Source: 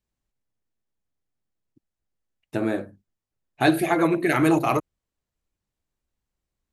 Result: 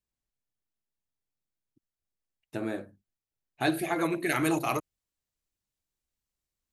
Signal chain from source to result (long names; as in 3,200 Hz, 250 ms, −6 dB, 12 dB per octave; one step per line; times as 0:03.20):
high-shelf EQ 2,400 Hz +4 dB, from 0:03.96 +10 dB
level −8.5 dB